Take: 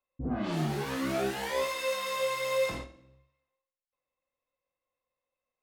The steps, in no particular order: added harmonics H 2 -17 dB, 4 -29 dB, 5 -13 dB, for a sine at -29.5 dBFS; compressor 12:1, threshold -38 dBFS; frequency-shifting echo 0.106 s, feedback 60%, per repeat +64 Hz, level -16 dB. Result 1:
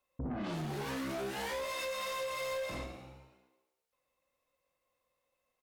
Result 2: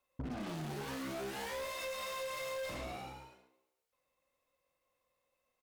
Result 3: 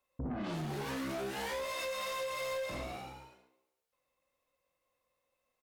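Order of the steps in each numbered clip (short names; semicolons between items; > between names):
compressor > frequency-shifting echo > added harmonics; frequency-shifting echo > added harmonics > compressor; frequency-shifting echo > compressor > added harmonics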